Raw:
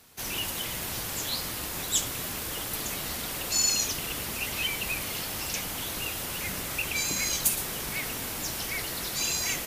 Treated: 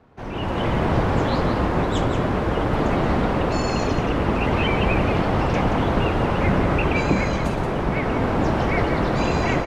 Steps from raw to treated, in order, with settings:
automatic gain control gain up to 11.5 dB
low-pass filter 1,000 Hz 12 dB per octave
single-tap delay 177 ms −8 dB
level +8.5 dB

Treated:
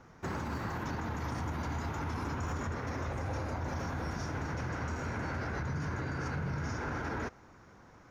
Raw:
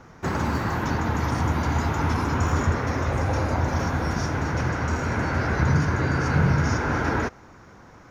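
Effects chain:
brickwall limiter −19.5 dBFS, peak gain reduction 10.5 dB
level −8.5 dB

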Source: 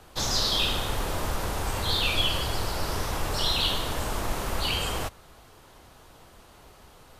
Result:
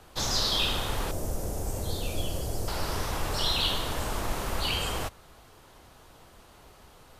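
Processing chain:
0:01.11–0:02.68: flat-topped bell 2,000 Hz −14 dB 2.6 octaves
level −1.5 dB

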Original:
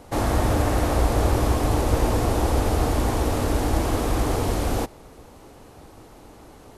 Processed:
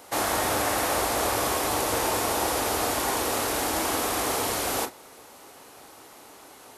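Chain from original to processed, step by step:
high-pass filter 1,200 Hz 6 dB per octave
high-shelf EQ 12,000 Hz +8.5 dB
on a send: convolution reverb, pre-delay 22 ms, DRR 8 dB
on the sum: level +4.5 dB

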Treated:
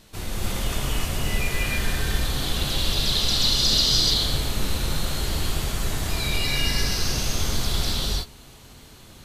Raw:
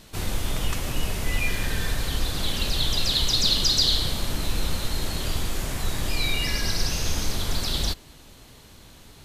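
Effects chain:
reverb whose tail is shaped and stops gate 330 ms rising, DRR −4 dB
level −3.5 dB

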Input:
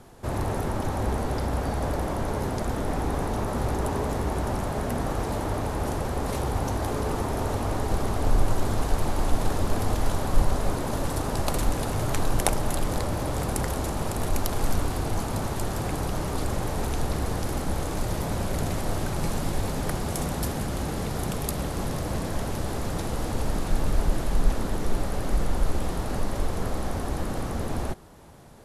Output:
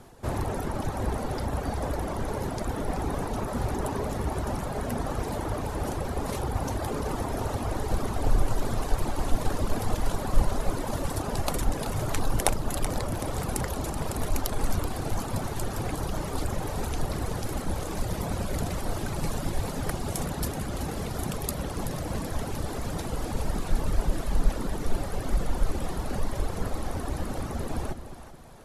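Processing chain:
reverb reduction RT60 1.2 s
echo with a time of its own for lows and highs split 620 Hz, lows 212 ms, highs 379 ms, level −11 dB

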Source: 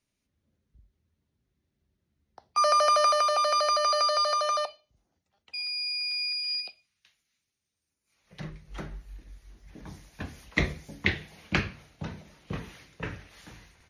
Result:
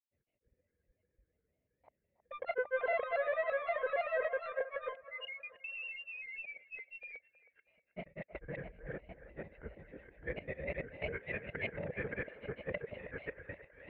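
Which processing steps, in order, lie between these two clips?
reversed piece by piece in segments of 106 ms
brickwall limiter −19 dBFS, peak gain reduction 10.5 dB
hard clipping −31 dBFS, distortion −7 dB
formant resonators in series e
granular cloud, grains 20 per second, spray 596 ms, pitch spread up and down by 3 semitones
on a send: delay with a band-pass on its return 318 ms, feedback 40%, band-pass 910 Hz, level −12 dB
on the sum: level +12.5 dB

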